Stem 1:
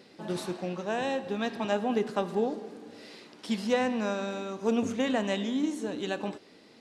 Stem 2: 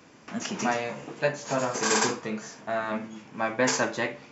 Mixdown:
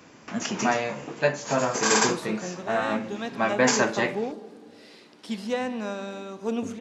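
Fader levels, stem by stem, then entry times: −1.5, +3.0 decibels; 1.80, 0.00 seconds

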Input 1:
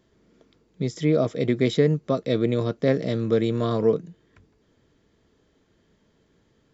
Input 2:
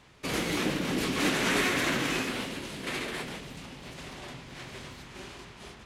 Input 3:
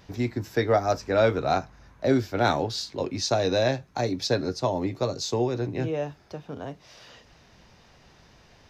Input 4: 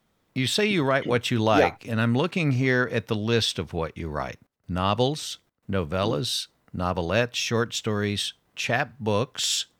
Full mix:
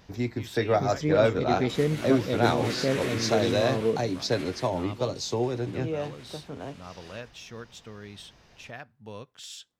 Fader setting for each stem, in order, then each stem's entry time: −5.5, −8.5, −2.0, −17.5 decibels; 0.00, 1.45, 0.00, 0.00 seconds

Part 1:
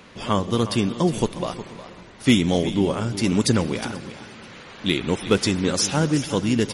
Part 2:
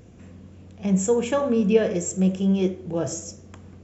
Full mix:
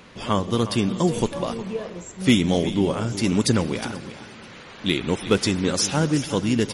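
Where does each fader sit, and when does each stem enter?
−0.5, −11.5 decibels; 0.00, 0.00 seconds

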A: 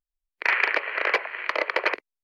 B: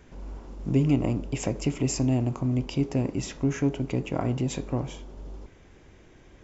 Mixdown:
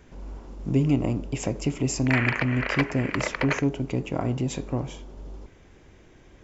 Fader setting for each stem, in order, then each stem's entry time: −4.0, +0.5 decibels; 1.65, 0.00 seconds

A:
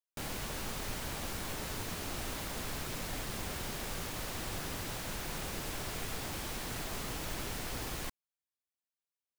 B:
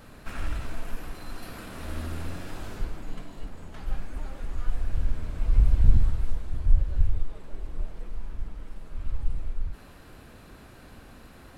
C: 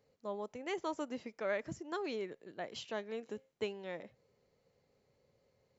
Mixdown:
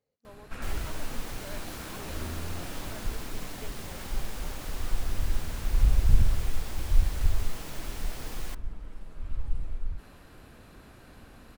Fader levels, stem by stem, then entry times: −2.5, −2.5, −10.5 decibels; 0.45, 0.25, 0.00 seconds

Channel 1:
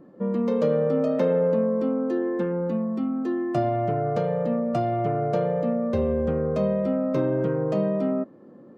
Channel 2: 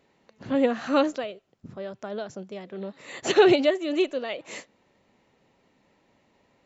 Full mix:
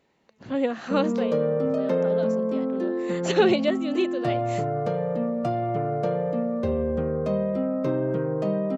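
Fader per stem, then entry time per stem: −1.5, −2.5 decibels; 0.70, 0.00 seconds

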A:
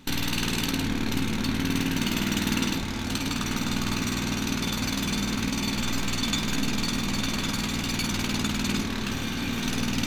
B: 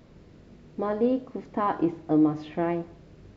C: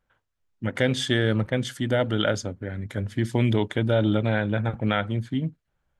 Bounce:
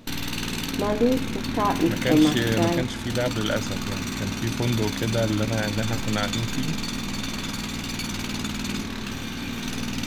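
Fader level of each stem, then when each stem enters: −2.0, +2.5, −2.5 decibels; 0.00, 0.00, 1.25 seconds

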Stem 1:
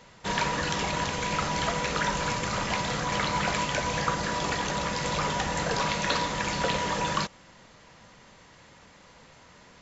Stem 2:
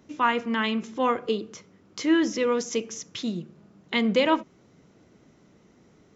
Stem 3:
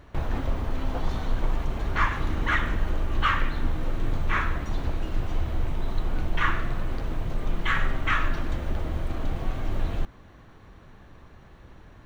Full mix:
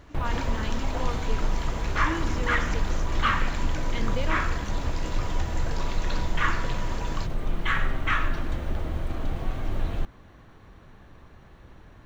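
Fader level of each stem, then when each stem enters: −10.0, −12.0, −0.5 decibels; 0.00, 0.00, 0.00 seconds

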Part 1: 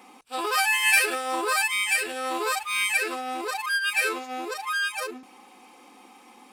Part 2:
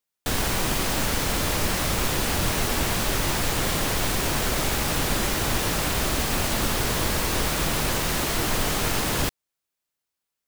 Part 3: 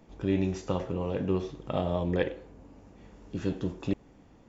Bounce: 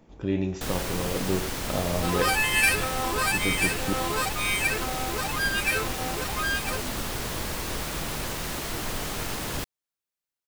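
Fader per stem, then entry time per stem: −2.0, −7.0, +0.5 decibels; 1.70, 0.35, 0.00 seconds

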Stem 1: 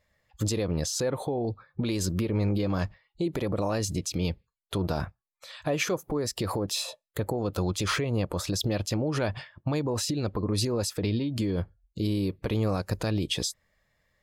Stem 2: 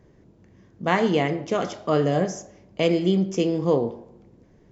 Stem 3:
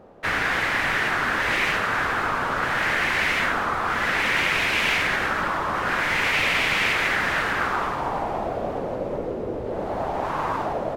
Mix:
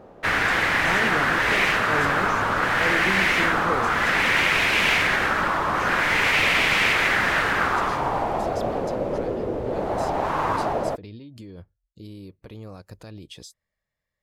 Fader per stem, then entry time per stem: −13.0, −8.5, +2.0 decibels; 0.00, 0.00, 0.00 seconds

